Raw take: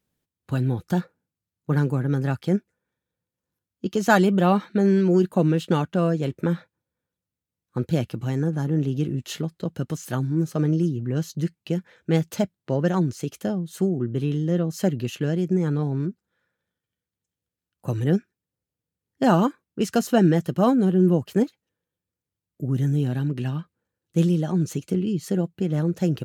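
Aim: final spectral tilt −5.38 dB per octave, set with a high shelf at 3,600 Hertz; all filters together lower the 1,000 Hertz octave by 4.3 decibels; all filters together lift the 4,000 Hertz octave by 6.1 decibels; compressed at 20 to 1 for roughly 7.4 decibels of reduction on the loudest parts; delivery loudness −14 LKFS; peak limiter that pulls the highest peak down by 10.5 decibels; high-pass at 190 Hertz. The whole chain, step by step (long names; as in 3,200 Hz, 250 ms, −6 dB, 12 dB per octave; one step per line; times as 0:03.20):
high-pass filter 190 Hz
parametric band 1,000 Hz −7 dB
high-shelf EQ 3,600 Hz +7 dB
parametric band 4,000 Hz +4 dB
downward compressor 20 to 1, threshold −22 dBFS
level +18.5 dB
brickwall limiter −4 dBFS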